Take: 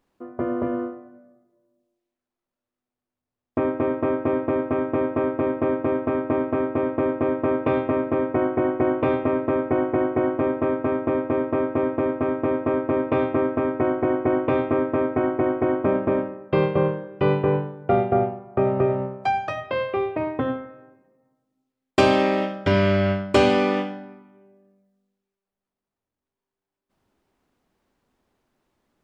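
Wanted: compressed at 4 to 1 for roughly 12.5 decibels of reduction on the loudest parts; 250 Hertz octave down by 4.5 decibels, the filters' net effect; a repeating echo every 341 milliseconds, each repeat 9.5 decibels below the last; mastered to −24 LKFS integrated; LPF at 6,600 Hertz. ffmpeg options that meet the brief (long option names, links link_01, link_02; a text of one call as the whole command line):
ffmpeg -i in.wav -af "lowpass=6600,equalizer=frequency=250:width_type=o:gain=-6,acompressor=threshold=-29dB:ratio=4,aecho=1:1:341|682|1023|1364:0.335|0.111|0.0365|0.012,volume=8.5dB" out.wav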